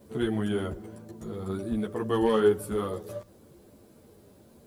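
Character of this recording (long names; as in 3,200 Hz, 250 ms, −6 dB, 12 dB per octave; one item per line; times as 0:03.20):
a quantiser's noise floor 12 bits, dither triangular
a shimmering, thickened sound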